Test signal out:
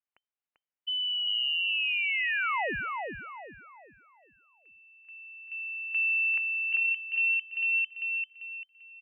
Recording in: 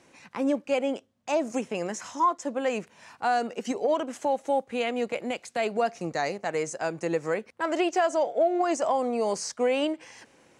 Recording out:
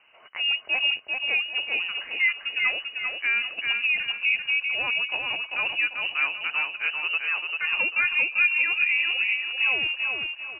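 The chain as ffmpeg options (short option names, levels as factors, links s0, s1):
-af "lowpass=f=2600:t=q:w=0.5098,lowpass=f=2600:t=q:w=0.6013,lowpass=f=2600:t=q:w=0.9,lowpass=f=2600:t=q:w=2.563,afreqshift=-3100,aecho=1:1:393|786|1179|1572|1965:0.631|0.227|0.0818|0.0294|0.0106"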